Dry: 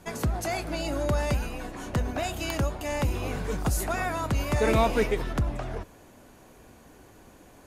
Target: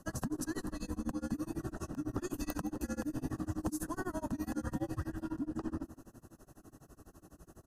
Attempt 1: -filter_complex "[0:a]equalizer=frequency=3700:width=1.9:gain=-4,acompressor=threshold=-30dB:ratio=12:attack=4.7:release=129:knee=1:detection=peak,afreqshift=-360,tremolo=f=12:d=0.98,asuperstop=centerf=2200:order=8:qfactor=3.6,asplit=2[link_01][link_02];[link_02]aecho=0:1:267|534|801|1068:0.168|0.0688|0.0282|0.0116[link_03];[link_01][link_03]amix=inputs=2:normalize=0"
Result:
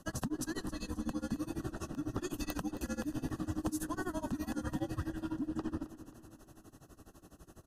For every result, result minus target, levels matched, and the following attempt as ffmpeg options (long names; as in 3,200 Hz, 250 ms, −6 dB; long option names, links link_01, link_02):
echo 102 ms late; 4,000 Hz band +4.5 dB
-filter_complex "[0:a]equalizer=frequency=3700:width=1.9:gain=-4,acompressor=threshold=-30dB:ratio=12:attack=4.7:release=129:knee=1:detection=peak,afreqshift=-360,tremolo=f=12:d=0.98,asuperstop=centerf=2200:order=8:qfactor=3.6,asplit=2[link_01][link_02];[link_02]aecho=0:1:165|330|495|660:0.168|0.0688|0.0282|0.0116[link_03];[link_01][link_03]amix=inputs=2:normalize=0"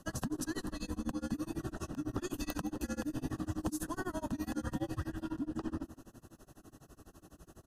4,000 Hz band +4.5 dB
-filter_complex "[0:a]equalizer=frequency=3700:width=1.9:gain=-13,acompressor=threshold=-30dB:ratio=12:attack=4.7:release=129:knee=1:detection=peak,afreqshift=-360,tremolo=f=12:d=0.98,asuperstop=centerf=2200:order=8:qfactor=3.6,asplit=2[link_01][link_02];[link_02]aecho=0:1:165|330|495|660:0.168|0.0688|0.0282|0.0116[link_03];[link_01][link_03]amix=inputs=2:normalize=0"